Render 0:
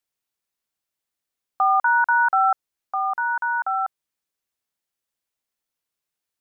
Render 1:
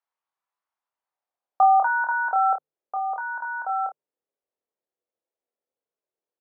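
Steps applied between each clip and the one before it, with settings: notches 50/100/150/200/250 Hz; early reflections 27 ms -4.5 dB, 54 ms -11.5 dB; band-pass sweep 1000 Hz -> 480 Hz, 0.8–2.28; gain +6.5 dB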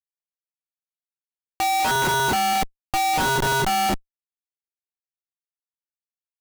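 in parallel at -7 dB: soft clip -17.5 dBFS, distortion -13 dB; on the sum: shoebox room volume 44 m³, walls mixed, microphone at 0.37 m; Schmitt trigger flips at -26 dBFS; gain -1 dB

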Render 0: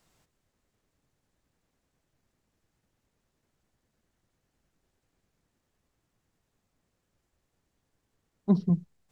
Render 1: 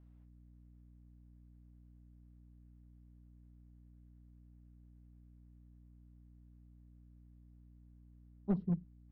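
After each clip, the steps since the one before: one-sided fold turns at -18.5 dBFS; hum 60 Hz, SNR 12 dB; air absorption 480 m; gain -8.5 dB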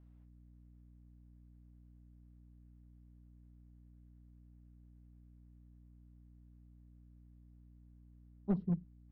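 nothing audible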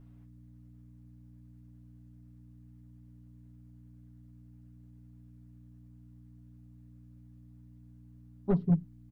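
comb 7.2 ms, depth 67%; gain +7 dB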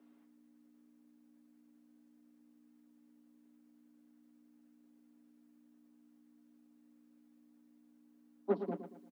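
steep high-pass 210 Hz 96 dB/oct; vocal rider within 4 dB 0.5 s; feedback echo 0.115 s, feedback 36%, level -9.5 dB; gain +1.5 dB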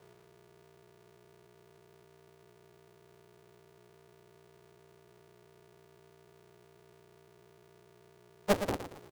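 cycle switcher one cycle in 2, inverted; gain +5 dB

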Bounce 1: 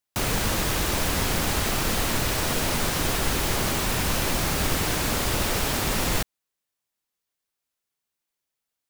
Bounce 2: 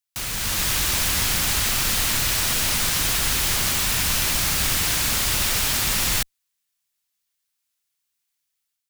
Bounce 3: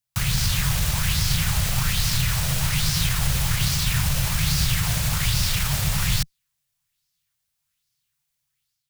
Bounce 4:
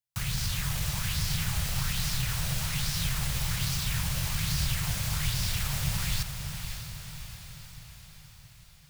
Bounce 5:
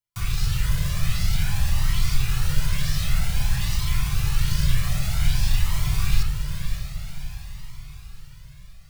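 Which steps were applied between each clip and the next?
passive tone stack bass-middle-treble 5-5-5; AGC gain up to 7 dB; gain +6 dB
limiter -18 dBFS, peak gain reduction 9 dB; resonant low shelf 200 Hz +11 dB, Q 3; LFO bell 1.2 Hz 540–5200 Hz +8 dB
diffused feedback echo 0.577 s, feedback 56%, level -7.5 dB; gain -8.5 dB
reverb RT60 0.50 s, pre-delay 6 ms, DRR -1.5 dB; cascading flanger rising 0.52 Hz; gain +3 dB

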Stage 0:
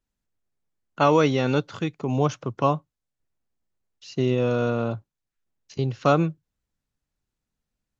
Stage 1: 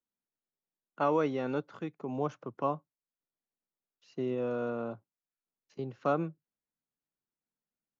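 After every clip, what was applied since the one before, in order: three-band isolator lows -19 dB, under 160 Hz, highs -12 dB, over 2000 Hz; gain -9 dB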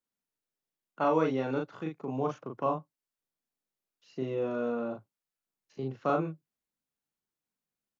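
doubler 38 ms -3 dB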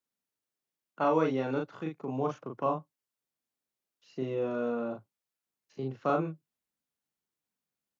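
HPF 48 Hz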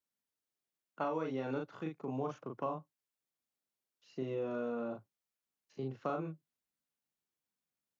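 compressor, threshold -29 dBFS, peak gain reduction 8 dB; gain -3.5 dB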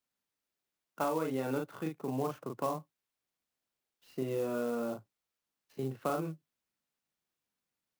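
clock jitter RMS 0.028 ms; gain +3.5 dB

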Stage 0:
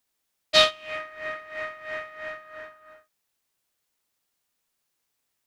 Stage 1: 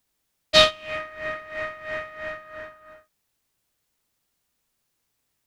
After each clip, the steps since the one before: low shelf 240 Hz +9.5 dB; gain +2 dB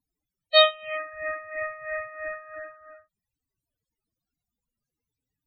loudest bins only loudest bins 16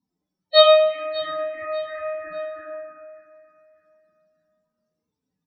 feedback echo 0.595 s, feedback 31%, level -16.5 dB; reverb RT60 0.70 s, pre-delay 3 ms, DRR -8.5 dB; gain -7 dB

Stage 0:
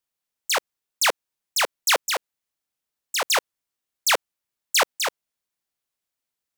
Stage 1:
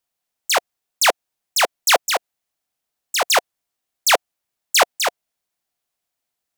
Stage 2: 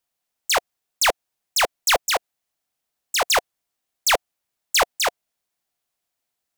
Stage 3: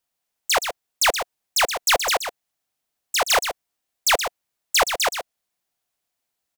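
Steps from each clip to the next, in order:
bell 710 Hz +7 dB 0.31 oct; gain +4 dB
soft clip -12.5 dBFS, distortion -14 dB
echo 0.123 s -8.5 dB

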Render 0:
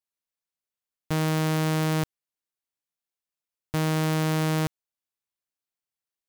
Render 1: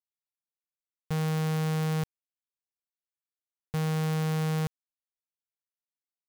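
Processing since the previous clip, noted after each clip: sample leveller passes 5; gain -7 dB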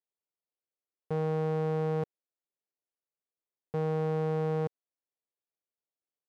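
band-pass 460 Hz, Q 1.4; gain +6.5 dB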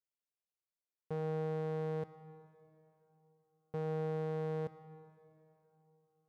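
plate-style reverb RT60 3.3 s, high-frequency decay 0.65×, DRR 13.5 dB; gain -7 dB

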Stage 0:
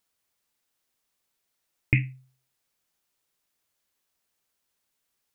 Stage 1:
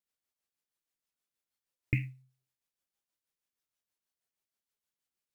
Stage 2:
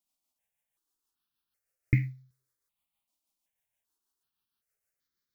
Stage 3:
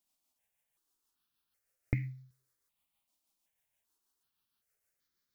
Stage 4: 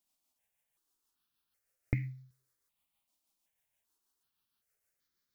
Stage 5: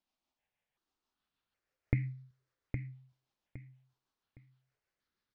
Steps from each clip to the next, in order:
rotary speaker horn 6.3 Hz; companded quantiser 8-bit; spectral noise reduction 6 dB; gain -5 dB
step phaser 2.6 Hz 450–2700 Hz; gain +6.5 dB
compressor 6:1, threshold -31 dBFS, peak gain reduction 12 dB; gain +2.5 dB
nothing audible
air absorption 190 m; on a send: feedback echo 0.813 s, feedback 28%, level -7 dB; on the sum: gain +1.5 dB

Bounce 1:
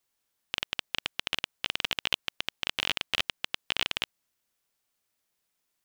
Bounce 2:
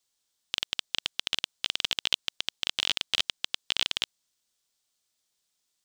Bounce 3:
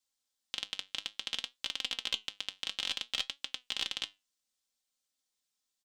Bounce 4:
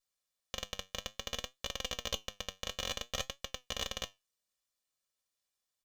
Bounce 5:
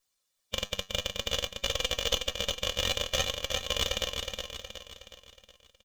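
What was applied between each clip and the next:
band shelf 5300 Hz +9 dB; gain -3.5 dB
comb 3.8 ms, depth 61%; flange 0.59 Hz, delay 7 ms, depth 3.6 ms, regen +74%; gain -4 dB
minimum comb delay 1.7 ms; gain -1 dB
bin magnitudes rounded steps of 15 dB; feedback echo 0.367 s, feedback 48%, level -5.5 dB; gain +8.5 dB

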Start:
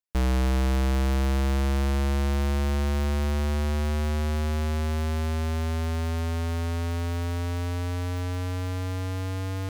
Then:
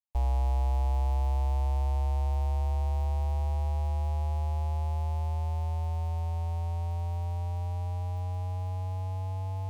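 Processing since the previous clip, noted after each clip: EQ curve 100 Hz 0 dB, 160 Hz -29 dB, 440 Hz -12 dB, 860 Hz +5 dB, 1400 Hz -23 dB, 2500 Hz -12 dB, 4000 Hz -14 dB, 8300 Hz -12 dB; gain -2.5 dB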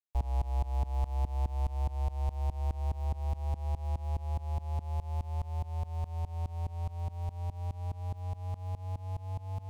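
tremolo saw up 4.8 Hz, depth 95%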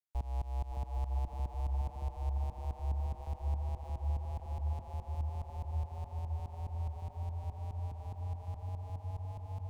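dark delay 0.563 s, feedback 71%, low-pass 1400 Hz, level -6 dB; gain -5.5 dB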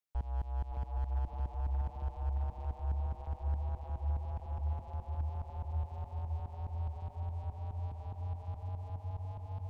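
slew limiter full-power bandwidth 6.6 Hz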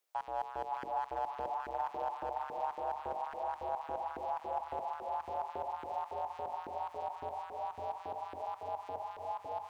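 LFO high-pass saw up 3.6 Hz 350–1600 Hz; notches 50/100/150/200/250/300/350/400/450 Hz; gain +9 dB

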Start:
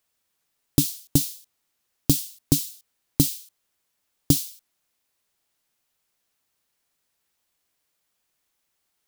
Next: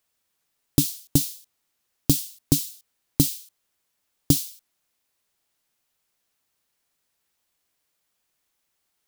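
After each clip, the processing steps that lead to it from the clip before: nothing audible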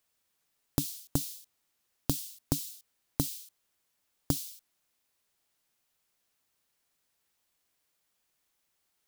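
compressor 5:1, threshold -24 dBFS, peak gain reduction 11 dB; gain -2 dB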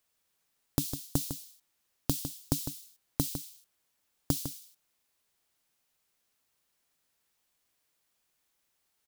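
echo 0.154 s -9.5 dB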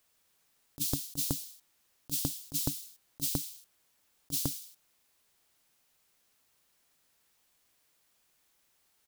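negative-ratio compressor -34 dBFS, ratio -0.5; gain +2.5 dB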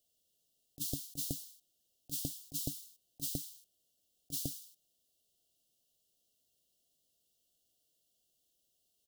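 brick-wall FIR band-stop 750–2700 Hz; gain -6 dB

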